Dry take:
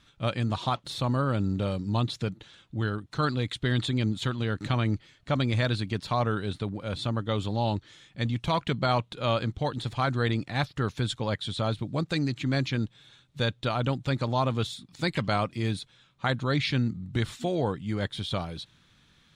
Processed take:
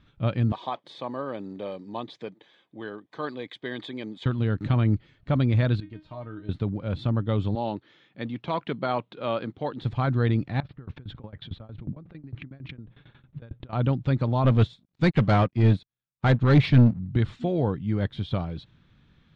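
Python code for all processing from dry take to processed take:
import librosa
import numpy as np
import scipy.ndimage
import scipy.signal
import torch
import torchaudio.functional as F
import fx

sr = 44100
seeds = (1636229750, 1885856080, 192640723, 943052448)

y = fx.chain(x, sr, fx.highpass(hz=420.0, slope=12),
    fx.notch_comb(f0_hz=1400.0), at=(0.52, 4.26))
y = fx.chain(y, sr, fx.high_shelf(hz=7100.0, db=-11.5),
    fx.comb_fb(f0_hz=310.0, decay_s=0.22, harmonics='all', damping=0.0, mix_pct=90), at=(5.8, 6.49))
y = fx.chain(y, sr, fx.highpass(hz=280.0, slope=12),
    fx.peak_eq(hz=8300.0, db=-14.0, octaves=0.46), at=(7.55, 9.82))
y = fx.chain(y, sr, fx.lowpass(hz=2400.0, slope=12),
    fx.over_compress(threshold_db=-39.0, ratio=-1.0),
    fx.tremolo_shape(shape='saw_down', hz=11.0, depth_pct=95), at=(10.6, 13.73))
y = fx.chain(y, sr, fx.leveller(passes=3),
    fx.upward_expand(threshold_db=-38.0, expansion=2.5), at=(14.44, 16.99))
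y = scipy.signal.sosfilt(scipy.signal.butter(2, 3200.0, 'lowpass', fs=sr, output='sos'), y)
y = fx.low_shelf(y, sr, hz=470.0, db=9.5)
y = y * 10.0 ** (-3.5 / 20.0)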